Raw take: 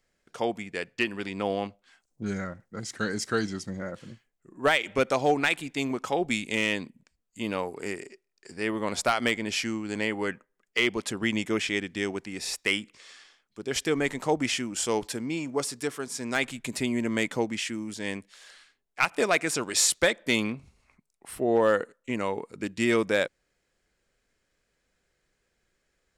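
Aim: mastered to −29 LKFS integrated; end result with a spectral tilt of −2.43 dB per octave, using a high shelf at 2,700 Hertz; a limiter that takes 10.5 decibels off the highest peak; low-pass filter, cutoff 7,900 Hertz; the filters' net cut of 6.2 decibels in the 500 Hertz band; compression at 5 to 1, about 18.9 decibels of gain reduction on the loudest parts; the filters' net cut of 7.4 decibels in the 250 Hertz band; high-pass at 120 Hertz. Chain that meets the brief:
high-pass filter 120 Hz
low-pass filter 7,900 Hz
parametric band 250 Hz −7.5 dB
parametric band 500 Hz −5.5 dB
high-shelf EQ 2,700 Hz +4.5 dB
downward compressor 5 to 1, threshold −40 dBFS
level +16 dB
brickwall limiter −15.5 dBFS

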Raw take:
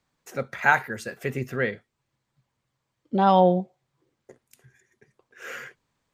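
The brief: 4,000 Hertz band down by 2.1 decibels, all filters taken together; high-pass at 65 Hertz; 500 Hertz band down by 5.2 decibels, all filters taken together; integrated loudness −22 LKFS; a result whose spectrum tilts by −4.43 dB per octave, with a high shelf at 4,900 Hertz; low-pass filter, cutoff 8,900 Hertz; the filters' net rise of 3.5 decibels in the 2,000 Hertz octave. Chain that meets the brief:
high-pass filter 65 Hz
low-pass filter 8,900 Hz
parametric band 500 Hz −6.5 dB
parametric band 2,000 Hz +6 dB
parametric band 4,000 Hz −8 dB
high-shelf EQ 4,900 Hz +6 dB
level +2.5 dB

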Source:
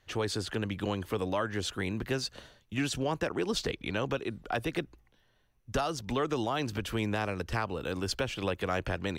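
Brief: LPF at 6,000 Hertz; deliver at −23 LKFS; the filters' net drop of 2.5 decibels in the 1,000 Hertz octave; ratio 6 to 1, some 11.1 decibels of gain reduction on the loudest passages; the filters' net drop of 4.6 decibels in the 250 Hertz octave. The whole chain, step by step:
low-pass filter 6,000 Hz
parametric band 250 Hz −6 dB
parametric band 1,000 Hz −3 dB
downward compressor 6 to 1, threshold −41 dBFS
level +22 dB

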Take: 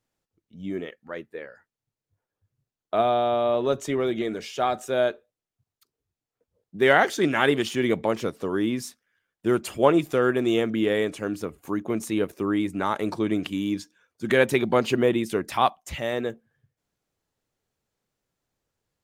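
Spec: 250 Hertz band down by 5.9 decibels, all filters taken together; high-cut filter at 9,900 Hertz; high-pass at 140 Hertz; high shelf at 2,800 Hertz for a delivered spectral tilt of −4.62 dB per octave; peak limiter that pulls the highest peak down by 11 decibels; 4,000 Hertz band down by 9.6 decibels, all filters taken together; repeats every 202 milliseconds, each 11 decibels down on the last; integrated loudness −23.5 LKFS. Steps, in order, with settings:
high-pass filter 140 Hz
low-pass filter 9,900 Hz
parametric band 250 Hz −8 dB
high-shelf EQ 2,800 Hz −6.5 dB
parametric band 4,000 Hz −8 dB
brickwall limiter −17.5 dBFS
repeating echo 202 ms, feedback 28%, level −11 dB
level +6.5 dB

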